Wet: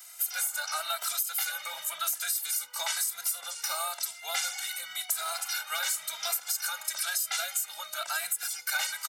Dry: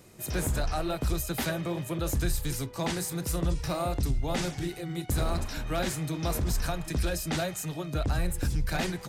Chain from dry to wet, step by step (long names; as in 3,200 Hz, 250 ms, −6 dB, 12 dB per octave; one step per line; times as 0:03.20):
spectral tilt +4.5 dB per octave
comb filter 1.4 ms, depth 86%
downward compressor 10 to 1, threshold −24 dBFS, peak gain reduction 10.5 dB
high-pass with resonance 1,100 Hz, resonance Q 1.8
barber-pole flanger 2.6 ms +0.98 Hz